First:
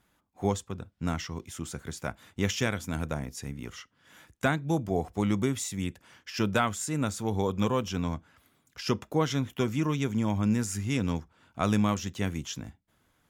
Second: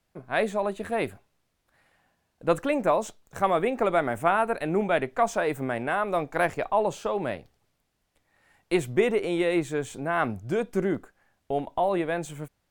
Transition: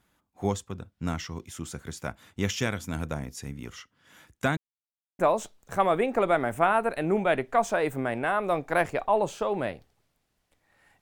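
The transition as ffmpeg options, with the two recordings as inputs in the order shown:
-filter_complex "[0:a]apad=whole_dur=11.01,atrim=end=11.01,asplit=2[s0][s1];[s0]atrim=end=4.57,asetpts=PTS-STARTPTS,afade=t=out:st=4.566:d=0.004:c=hsin[s2];[s1]atrim=start=4.57:end=5.19,asetpts=PTS-STARTPTS,volume=0[s3];[1:a]atrim=start=2.83:end=8.65,asetpts=PTS-STARTPTS,afade=t=in:d=0.004:c=hsin[s4];[s2][s3][s4]concat=n=3:v=0:a=1"

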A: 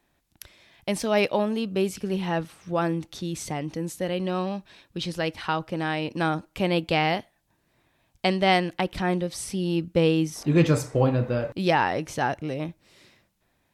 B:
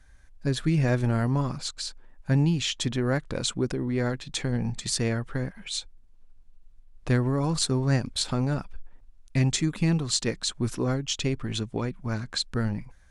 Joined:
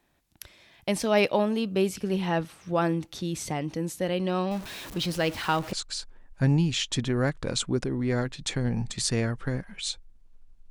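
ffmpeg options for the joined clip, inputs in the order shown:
-filter_complex "[0:a]asettb=1/sr,asplit=3[s0][s1][s2];[s0]atrim=end=4.514[s3];[s1]atrim=start=4.51:end=5.73,asetpts=PTS-STARTPTS,afade=t=in:d=0.004:c=qsin,afade=t=out:st=1.216:d=0.004:c=qsin,aeval=exprs='val(0)+0.5*0.0168*sgn(val(0))':c=same[s4];[s2]atrim=start=5.726[s5];[s3][s4]acrossfade=d=0.004:c1=hsin:c2=qsin[s6];[s6][s5]acrossfade=d=0.004:c1=qsin:c2=hsin,apad=whole_dur=10.7,atrim=end=10.7,atrim=end=5.732[s7];[1:a]atrim=start=1.608:end=6.58[s8];[s7][s8]acrossfade=d=0.004:c1=hsin:c2=hsin"

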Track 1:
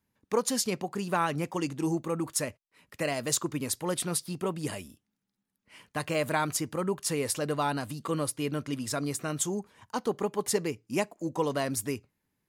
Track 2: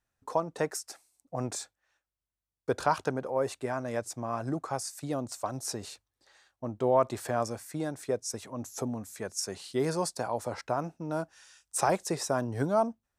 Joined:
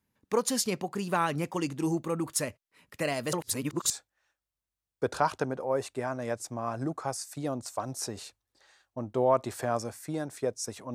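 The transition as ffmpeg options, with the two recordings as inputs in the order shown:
-filter_complex "[0:a]apad=whole_dur=10.94,atrim=end=10.94,asplit=2[s0][s1];[s0]atrim=end=3.332[s2];[s1]atrim=start=3.328:end=3.902,asetpts=PTS-STARTPTS,areverse[s3];[1:a]atrim=start=1.558:end=8.6[s4];[s2][s3]acrossfade=d=0.004:c1=hsin:c2=hsin[s5];[s5][s4]acrossfade=d=0.004:c1=hsin:c2=hsin"

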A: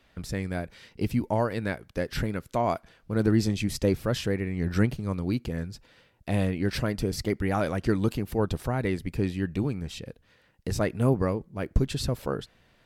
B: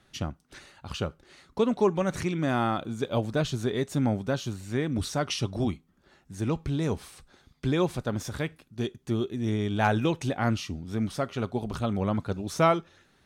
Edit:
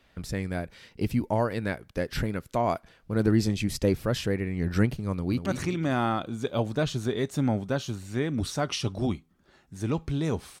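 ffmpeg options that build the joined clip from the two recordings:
-filter_complex "[0:a]apad=whole_dur=10.6,atrim=end=10.6,atrim=end=5.462[s0];[1:a]atrim=start=2.038:end=7.18[s1];[s0][s1]acrossfade=d=0.004:c1=hsin:c2=hsin,asplit=2[s2][s3];[s3]afade=t=in:st=5.12:d=0.01,afade=t=out:st=5.46:d=0.01,aecho=0:1:190|380|570|760|950:0.421697|0.189763|0.0853935|0.0384271|0.0172922[s4];[s2][s4]amix=inputs=2:normalize=0"

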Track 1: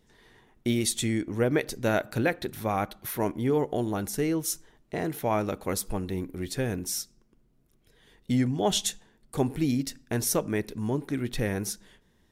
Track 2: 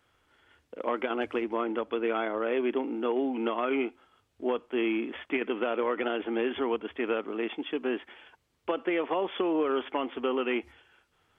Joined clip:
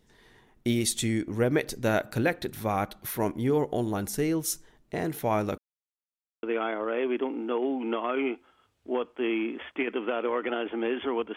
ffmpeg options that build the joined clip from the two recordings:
-filter_complex "[0:a]apad=whole_dur=11.36,atrim=end=11.36,asplit=2[s0][s1];[s0]atrim=end=5.58,asetpts=PTS-STARTPTS,afade=t=out:st=5.576:d=0.004:c=hsin[s2];[s1]atrim=start=5.58:end=6.43,asetpts=PTS-STARTPTS,volume=0[s3];[1:a]atrim=start=1.97:end=6.9,asetpts=PTS-STARTPTS,afade=t=in:d=0.004:c=hsin[s4];[s2][s3][s4]concat=n=3:v=0:a=1"

